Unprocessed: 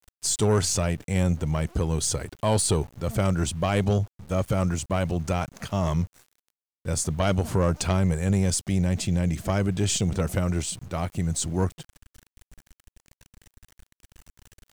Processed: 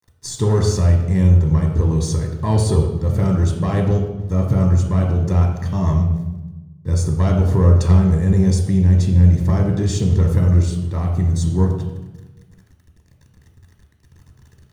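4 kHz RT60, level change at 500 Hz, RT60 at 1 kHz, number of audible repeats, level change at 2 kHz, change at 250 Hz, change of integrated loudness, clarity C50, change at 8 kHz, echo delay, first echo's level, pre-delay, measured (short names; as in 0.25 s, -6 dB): 0.80 s, +3.5 dB, 1.0 s, none, -1.5 dB, +7.5 dB, +8.5 dB, 4.5 dB, -4.5 dB, none, none, 3 ms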